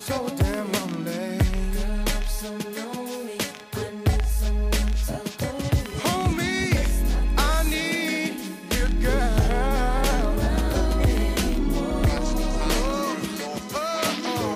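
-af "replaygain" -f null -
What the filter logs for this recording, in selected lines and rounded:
track_gain = +7.8 dB
track_peak = 0.188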